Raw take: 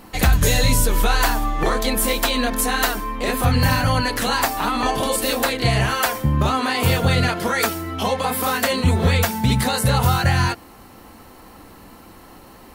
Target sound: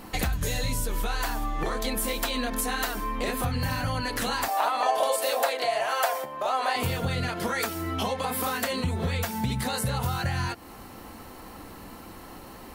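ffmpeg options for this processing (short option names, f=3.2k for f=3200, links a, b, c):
-filter_complex "[0:a]acompressor=threshold=-26dB:ratio=5,asettb=1/sr,asplit=3[a][b][c];[a]atrim=end=4.484[d];[b]atrim=start=4.48:end=6.76,asetpts=PTS-STARTPTS,afade=t=in:d=0.004:c=qsin,afade=t=out:st=2.276:d=0.004:c=qsin,highpass=f=640:t=q:w=3.5[e];[c]atrim=start=6.756[f];[d][e]acrossfade=d=0.004:c1=hsin:c2=qsin[g];[g][f]acrossfade=d=0.004:c1=qsin:c2=hsin"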